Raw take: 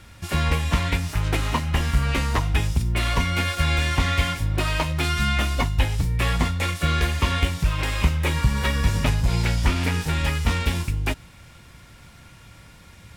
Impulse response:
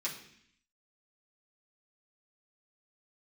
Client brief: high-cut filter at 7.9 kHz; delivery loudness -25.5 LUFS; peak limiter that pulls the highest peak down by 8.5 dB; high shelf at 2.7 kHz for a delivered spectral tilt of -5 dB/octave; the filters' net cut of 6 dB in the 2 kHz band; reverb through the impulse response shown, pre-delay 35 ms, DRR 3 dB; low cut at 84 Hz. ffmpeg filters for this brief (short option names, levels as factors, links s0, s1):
-filter_complex "[0:a]highpass=84,lowpass=7900,equalizer=f=2000:t=o:g=-5.5,highshelf=f=2700:g=-4.5,alimiter=limit=0.119:level=0:latency=1,asplit=2[s0][s1];[1:a]atrim=start_sample=2205,adelay=35[s2];[s1][s2]afir=irnorm=-1:irlink=0,volume=0.531[s3];[s0][s3]amix=inputs=2:normalize=0,volume=1.19"